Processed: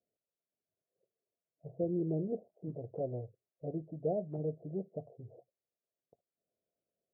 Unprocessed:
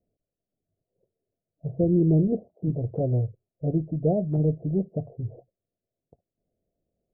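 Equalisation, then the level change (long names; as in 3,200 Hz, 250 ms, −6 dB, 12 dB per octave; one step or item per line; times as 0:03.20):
resonant band-pass 470 Hz, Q 0.6
parametric band 290 Hz −3 dB
low-shelf EQ 420 Hz −7 dB
−4.5 dB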